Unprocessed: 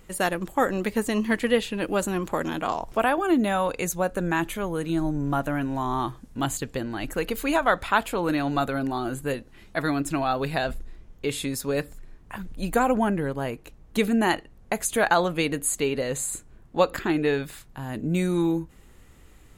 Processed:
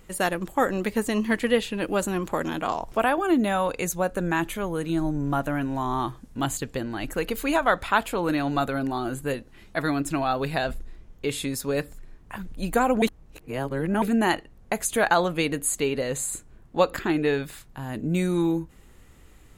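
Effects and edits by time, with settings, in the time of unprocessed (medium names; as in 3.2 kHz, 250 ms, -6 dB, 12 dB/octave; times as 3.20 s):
13.02–14.02 s: reverse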